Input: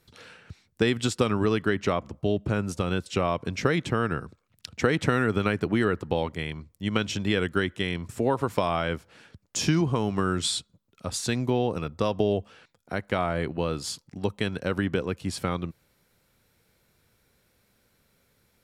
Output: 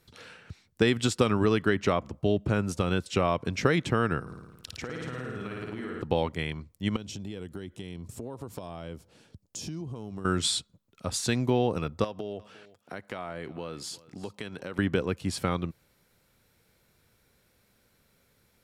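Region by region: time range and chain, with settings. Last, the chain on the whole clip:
4.21–6.02 flutter echo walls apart 9.4 m, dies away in 1.2 s + compressor 4:1, threshold -36 dBFS
6.96–10.25 bell 1700 Hz -12.5 dB 1.9 oct + compressor 4:1, threshold -36 dBFS
12.04–14.79 HPF 170 Hz 6 dB/oct + compressor 2.5:1, threshold -37 dBFS + echo 0.354 s -19.5 dB
whole clip: dry

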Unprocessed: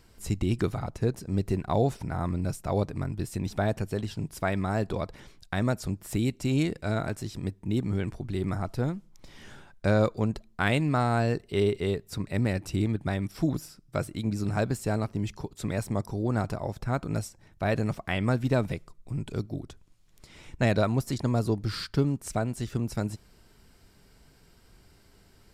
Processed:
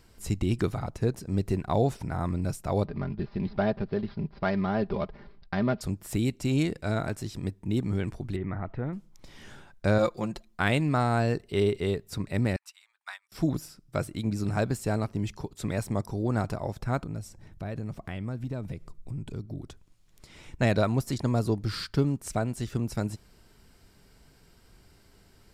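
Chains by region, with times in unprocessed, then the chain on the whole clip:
2.84–5.81 median filter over 15 samples + steep low-pass 5200 Hz 72 dB/oct + comb 5 ms, depth 58%
8.36–8.93 LPF 2600 Hz 24 dB/oct + bell 1900 Hz +7 dB 0.21 oct + compressor 1.5:1, threshold -33 dBFS
9.98–10.6 low shelf 430 Hz -7 dB + comb 5.7 ms, depth 73%
12.56–13.32 steep high-pass 950 Hz + short-mantissa float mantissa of 8-bit + upward expander 2.5:1, over -51 dBFS
17.03–19.61 low shelf 370 Hz +8.5 dB + compressor 2.5:1, threshold -37 dBFS
whole clip: dry

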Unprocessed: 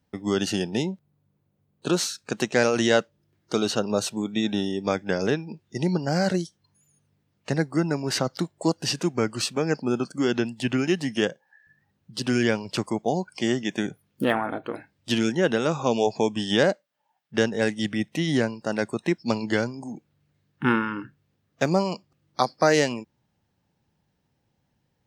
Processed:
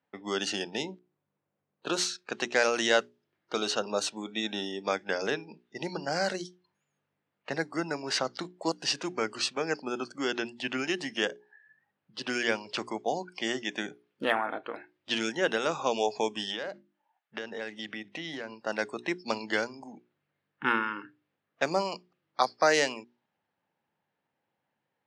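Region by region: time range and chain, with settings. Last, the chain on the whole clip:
16.49–18.53 notches 50/100/150/200/250/300/350 Hz + compressor 12:1, threshold -26 dBFS
whole clip: notches 60/120/180/240/300/360/420 Hz; low-pass opened by the level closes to 2400 Hz, open at -18 dBFS; weighting filter A; gain -2 dB

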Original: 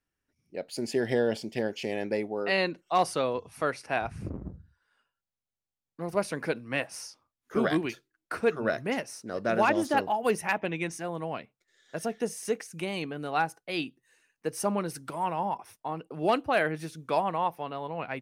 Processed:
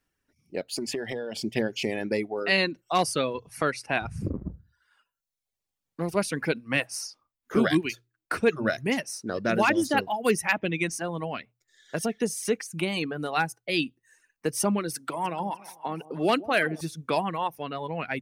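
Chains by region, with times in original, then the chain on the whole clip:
0.61–1.39 HPF 190 Hz 6 dB/oct + compressor, threshold -34 dBFS
14.94–16.81 HPF 180 Hz + echo with dull and thin repeats by turns 0.15 s, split 860 Hz, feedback 57%, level -10.5 dB
whole clip: reverb removal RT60 0.91 s; notches 60/120 Hz; dynamic EQ 760 Hz, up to -8 dB, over -40 dBFS, Q 0.7; gain +7.5 dB

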